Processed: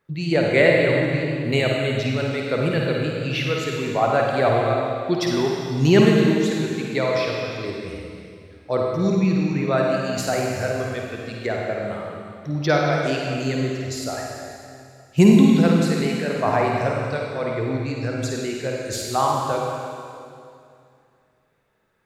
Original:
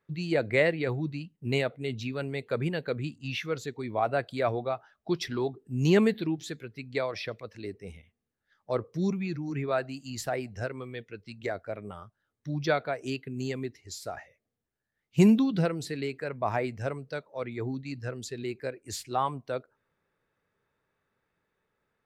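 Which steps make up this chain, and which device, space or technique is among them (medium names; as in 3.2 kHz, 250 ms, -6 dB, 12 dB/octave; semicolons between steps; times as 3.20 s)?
tunnel (flutter echo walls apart 9.1 m, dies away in 0.41 s; reverberation RT60 2.4 s, pre-delay 48 ms, DRR -0.5 dB); trim +6 dB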